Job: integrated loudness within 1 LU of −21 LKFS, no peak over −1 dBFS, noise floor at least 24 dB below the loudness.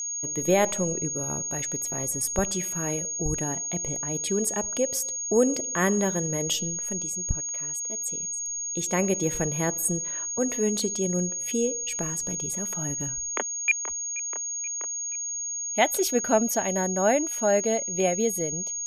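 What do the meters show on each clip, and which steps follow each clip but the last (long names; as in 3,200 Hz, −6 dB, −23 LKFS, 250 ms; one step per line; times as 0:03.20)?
interfering tone 6,600 Hz; level of the tone −29 dBFS; integrated loudness −26.0 LKFS; sample peak −9.5 dBFS; target loudness −21.0 LKFS
→ notch filter 6,600 Hz, Q 30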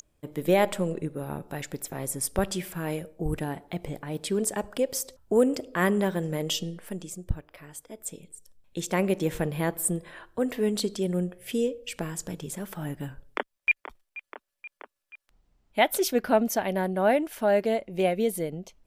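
interfering tone none found; integrated loudness −28.5 LKFS; sample peak −10.0 dBFS; target loudness −21.0 LKFS
→ level +7.5 dB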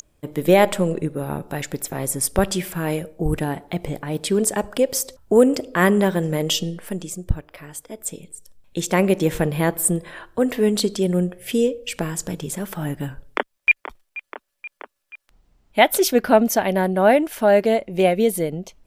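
integrated loudness −21.0 LKFS; sample peak −2.5 dBFS; background noise floor −76 dBFS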